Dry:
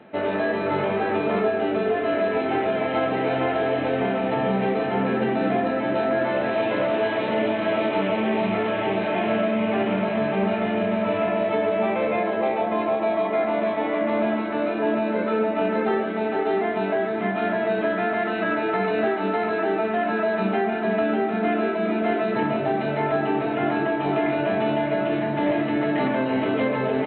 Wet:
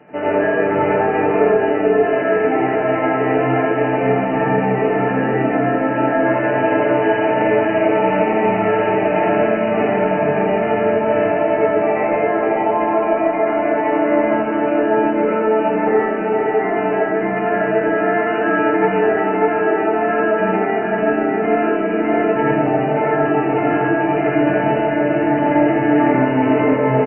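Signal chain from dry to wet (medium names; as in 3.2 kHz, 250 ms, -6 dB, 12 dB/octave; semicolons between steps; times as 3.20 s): brick-wall FIR low-pass 3 kHz; comb 6.7 ms, depth 54%; reverberation RT60 0.40 s, pre-delay 72 ms, DRR -4 dB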